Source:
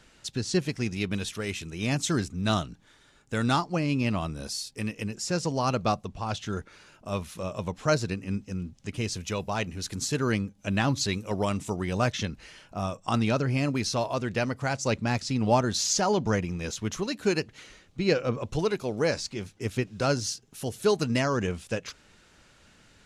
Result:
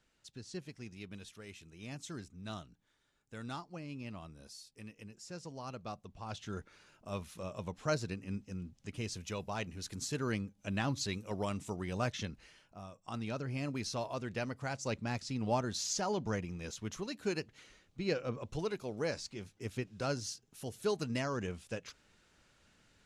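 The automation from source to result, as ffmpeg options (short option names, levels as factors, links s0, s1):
-af "afade=t=in:st=5.89:d=0.69:silence=0.354813,afade=t=out:st=12.29:d=0.57:silence=0.316228,afade=t=in:st=12.86:d=0.96:silence=0.354813"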